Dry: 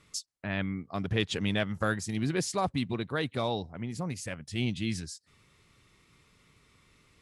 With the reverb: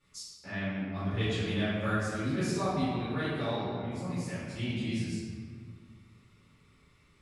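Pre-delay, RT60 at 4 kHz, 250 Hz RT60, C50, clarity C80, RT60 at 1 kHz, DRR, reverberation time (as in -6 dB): 6 ms, 1.1 s, 2.4 s, -3.5 dB, -0.5 dB, 2.0 s, -14.5 dB, 2.0 s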